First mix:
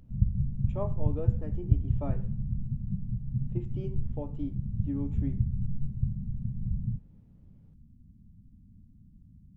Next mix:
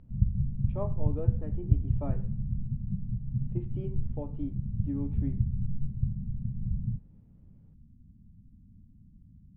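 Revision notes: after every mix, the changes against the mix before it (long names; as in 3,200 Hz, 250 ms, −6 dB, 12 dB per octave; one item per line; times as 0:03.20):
master: add high-frequency loss of the air 300 metres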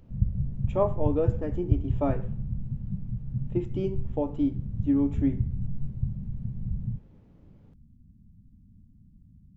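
speech +10.5 dB
master: remove high-frequency loss of the air 300 metres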